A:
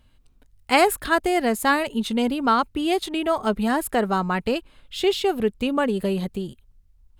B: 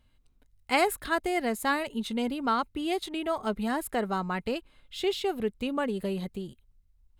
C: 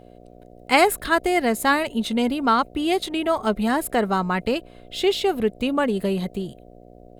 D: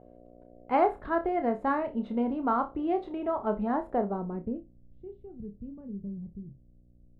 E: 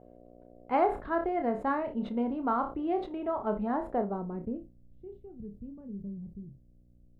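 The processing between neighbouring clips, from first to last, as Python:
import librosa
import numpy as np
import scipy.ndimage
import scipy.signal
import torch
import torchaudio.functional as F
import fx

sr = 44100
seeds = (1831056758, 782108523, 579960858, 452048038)

y1 = fx.small_body(x, sr, hz=(2100.0, 3900.0), ring_ms=45, db=7)
y1 = y1 * librosa.db_to_amplitude(-7.5)
y2 = fx.dmg_buzz(y1, sr, base_hz=60.0, harmonics=12, level_db=-55.0, tilt_db=0, odd_only=False)
y2 = y2 * librosa.db_to_amplitude(8.0)
y3 = fx.room_flutter(y2, sr, wall_m=5.1, rt60_s=0.22)
y3 = fx.filter_sweep_lowpass(y3, sr, from_hz=970.0, to_hz=140.0, start_s=3.88, end_s=4.81, q=1.1)
y3 = y3 * librosa.db_to_amplitude(-8.0)
y4 = fx.sustainer(y3, sr, db_per_s=140.0)
y4 = y4 * librosa.db_to_amplitude(-2.0)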